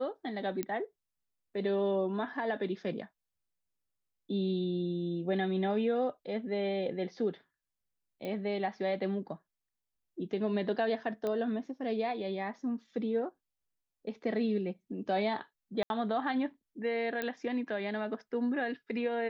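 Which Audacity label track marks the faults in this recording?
0.630000	0.630000	pop -20 dBFS
8.250000	8.250000	pop -27 dBFS
11.270000	11.270000	pop -23 dBFS
15.830000	15.900000	gap 71 ms
17.220000	17.220000	pop -20 dBFS

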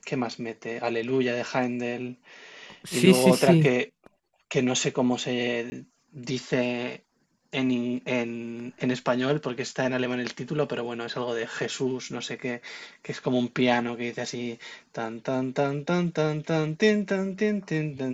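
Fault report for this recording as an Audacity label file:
5.700000	5.720000	gap 20 ms

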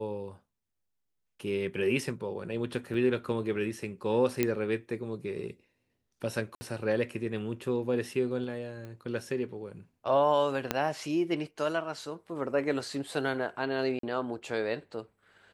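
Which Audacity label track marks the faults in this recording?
2.940000	2.940000	gap 3.9 ms
4.430000	4.430000	pop -12 dBFS
6.550000	6.610000	gap 60 ms
8.850000	8.850000	pop -31 dBFS
10.710000	10.710000	pop -11 dBFS
13.990000	14.030000	gap 43 ms

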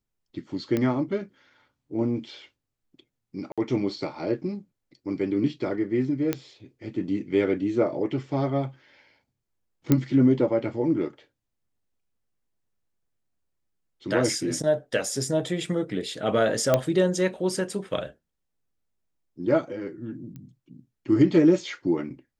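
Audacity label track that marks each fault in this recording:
0.770000	0.770000	pop -14 dBFS
3.520000	3.580000	gap 56 ms
6.330000	6.330000	pop -11 dBFS
9.920000	9.920000	pop -7 dBFS
16.740000	16.740000	pop -7 dBFS
20.360000	20.360000	pop -29 dBFS

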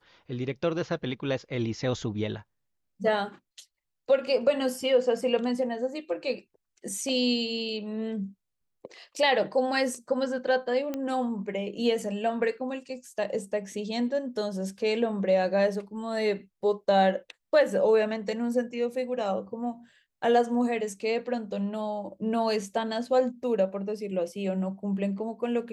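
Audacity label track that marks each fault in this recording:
10.940000	10.940000	pop -19 dBFS

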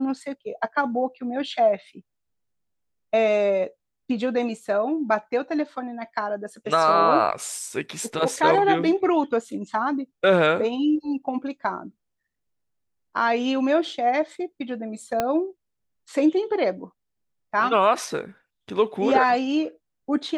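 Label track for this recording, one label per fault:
15.200000	15.200000	pop -9 dBFS

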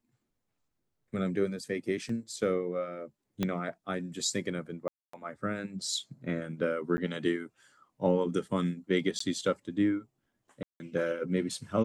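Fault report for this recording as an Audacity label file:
2.090000	2.090000	gap 3.7 ms
3.430000	3.430000	pop -16 dBFS
4.880000	5.130000	gap 0.254 s
6.970000	6.980000	gap 10 ms
9.190000	9.200000	gap 14 ms
10.630000	10.800000	gap 0.17 s

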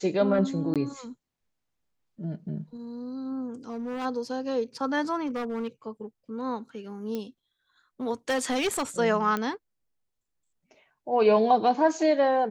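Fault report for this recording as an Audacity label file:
0.740000	0.760000	gap 17 ms
3.690000	4.060000	clipped -29.5 dBFS
5.260000	5.680000	clipped -27 dBFS
7.150000	7.150000	pop -20 dBFS
8.290000	8.830000	clipped -22.5 dBFS
9.370000	9.370000	pop -16 dBFS

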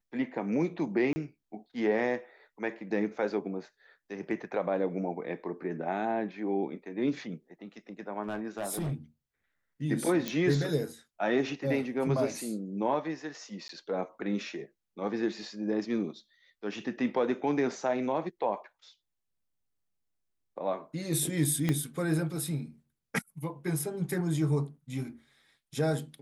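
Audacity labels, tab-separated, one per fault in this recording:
1.130000	1.160000	gap 30 ms
8.230000	8.930000	clipped -29.5 dBFS
10.280000	10.280000	pop -16 dBFS
13.680000	13.690000	gap
21.690000	21.690000	pop -15 dBFS

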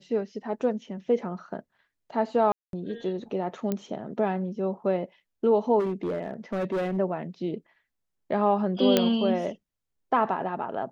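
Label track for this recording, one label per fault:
2.520000	2.730000	gap 0.212 s
3.720000	3.720000	pop -15 dBFS
5.790000	6.980000	clipped -24.5 dBFS
8.970000	8.970000	pop -6 dBFS

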